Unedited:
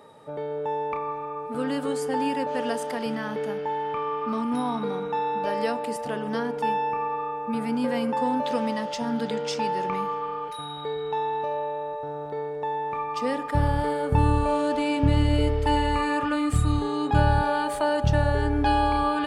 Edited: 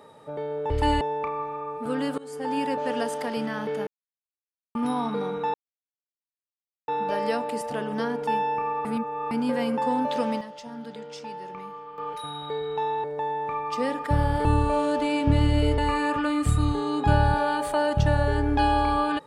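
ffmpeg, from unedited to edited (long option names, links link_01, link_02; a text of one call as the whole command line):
ffmpeg -i in.wav -filter_complex "[0:a]asplit=14[link_01][link_02][link_03][link_04][link_05][link_06][link_07][link_08][link_09][link_10][link_11][link_12][link_13][link_14];[link_01]atrim=end=0.702[link_15];[link_02]atrim=start=15.538:end=15.852[link_16];[link_03]atrim=start=0.698:end=1.87,asetpts=PTS-STARTPTS,afade=type=out:start_time=1.168:duration=0.004:curve=hsin:silence=0.0841395[link_17];[link_04]atrim=start=1.87:end=3.56,asetpts=PTS-STARTPTS,afade=type=in:duration=0.45:silence=0.0841395,afade=type=out:start_time=1.686:duration=0.004:curve=hsin[link_18];[link_05]atrim=start=3.56:end=4.44,asetpts=PTS-STARTPTS,volume=0[link_19];[link_06]atrim=start=4.44:end=5.23,asetpts=PTS-STARTPTS,afade=type=in:duration=0.004:curve=hsin,afade=type=out:start_time=0.786:duration=0.004:curve=hsin,apad=pad_dur=1.34[link_20];[link_07]atrim=start=5.23:end=7.202,asetpts=PTS-STARTPTS,afade=type=in:duration=0.004:curve=hsin[link_21];[link_08]atrim=start=7.198:end=7.662,asetpts=PTS-STARTPTS,areverse[link_22];[link_09]atrim=start=7.658:end=8.76,asetpts=PTS-STARTPTS,afade=type=out:start_time=0.872:duration=0.23:curve=log:silence=0.281838[link_23];[link_10]atrim=start=8.76:end=10.33,asetpts=PTS-STARTPTS,volume=-11dB[link_24];[link_11]atrim=start=10.33:end=11.392,asetpts=PTS-STARTPTS,afade=type=in:duration=0.23:curve=log:silence=0.281838[link_25];[link_12]atrim=start=12.478:end=13.892[link_26];[link_13]atrim=start=14.208:end=15.542[link_27];[link_14]atrim=start=15.848[link_28];[link_15][link_16]acrossfade=duration=0.004:curve1=hsin:curve2=hsin[link_29];[link_17][link_18][link_19][link_20][link_21]concat=n=5:v=0:a=1[link_30];[link_29][link_30]acrossfade=duration=0.004:curve1=hsin:curve2=hsin[link_31];[link_31][link_22]acrossfade=duration=0.004:curve1=hsin:curve2=hsin[link_32];[link_23][link_24][link_25]concat=n=3:v=0:a=1[link_33];[link_32][link_33]acrossfade=duration=0.004:curve1=hsin:curve2=hsin[link_34];[link_34][link_26]acrossfade=duration=0.004:curve1=hsin:curve2=hsin[link_35];[link_35][link_27]acrossfade=duration=0.004:curve1=hsin:curve2=hsin[link_36];[link_36][link_28]acrossfade=duration=0.004:curve1=hsin:curve2=hsin" out.wav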